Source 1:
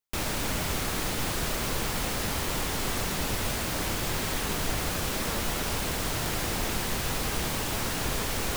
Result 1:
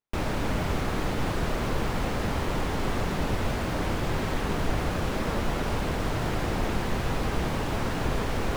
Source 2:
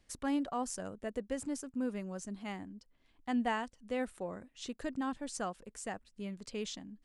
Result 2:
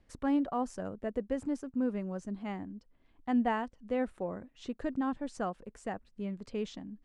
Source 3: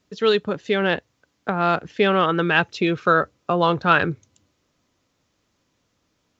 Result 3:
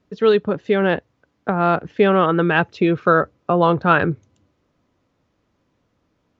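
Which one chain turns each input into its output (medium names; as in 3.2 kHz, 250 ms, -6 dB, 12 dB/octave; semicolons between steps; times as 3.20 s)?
low-pass 1.2 kHz 6 dB/octave; trim +4.5 dB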